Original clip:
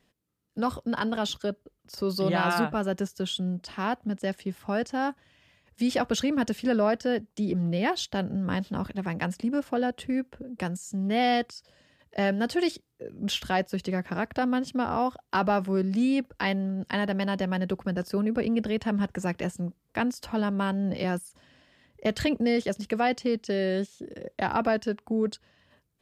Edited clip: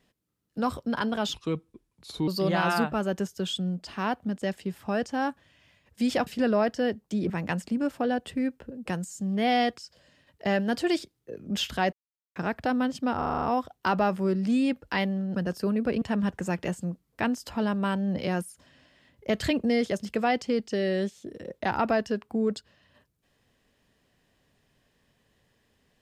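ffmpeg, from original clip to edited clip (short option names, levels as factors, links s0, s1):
-filter_complex "[0:a]asplit=15[s0][s1][s2][s3][s4][s5][s6][s7][s8][s9][s10][s11][s12][s13][s14];[s0]atrim=end=1.344[s15];[s1]atrim=start=1.34:end=2.08,asetpts=PTS-STARTPTS,asetrate=34839,aresample=44100[s16];[s2]atrim=start=2.076:end=6.072[s17];[s3]atrim=start=6.528:end=7.562[s18];[s4]atrim=start=9.018:end=13.65,asetpts=PTS-STARTPTS,afade=t=out:st=4.628:d=0.004:c=hsin[s19];[s5]atrim=start=13.65:end=14.08,asetpts=PTS-STARTPTS,volume=0[s20];[s6]atrim=start=14.08:end=14.942,asetpts=PTS-STARTPTS,afade=t=in:d=0.004:c=hsin[s21];[s7]atrim=start=14.898:end=14.942[s22];[s8]atrim=start=14.898:end=14.942[s23];[s9]atrim=start=14.898:end=14.942[s24];[s10]atrim=start=14.898:end=14.942[s25];[s11]atrim=start=14.898:end=14.942[s26];[s12]atrim=start=14.898:end=16.842[s27];[s13]atrim=start=17.858:end=18.522[s28];[s14]atrim=start=18.778[s29];[s15][s16]acrossfade=d=0.004:c1=hsin:c2=hsin[s30];[s30][s17]acrossfade=d=0.004:c1=hsin:c2=hsin[s31];[s31][s18]acrossfade=d=0.004:c1=hsin:c2=hsin[s32];[s19][s20][s21]concat=n=3:v=0:a=1[s33];[s32][s33]acrossfade=d=0.004:c1=hsin:c2=hsin[s34];[s34][s22]acrossfade=d=0.004:c1=hsin:c2=hsin[s35];[s35][s23]acrossfade=d=0.004:c1=hsin:c2=hsin[s36];[s36][s24]acrossfade=d=0.004:c1=hsin:c2=hsin[s37];[s37][s25]acrossfade=d=0.004:c1=hsin:c2=hsin[s38];[s38][s26]acrossfade=d=0.004:c1=hsin:c2=hsin[s39];[s39][s27]acrossfade=d=0.004:c1=hsin:c2=hsin[s40];[s40][s28]acrossfade=d=0.004:c1=hsin:c2=hsin[s41];[s41][s29]acrossfade=d=0.004:c1=hsin:c2=hsin"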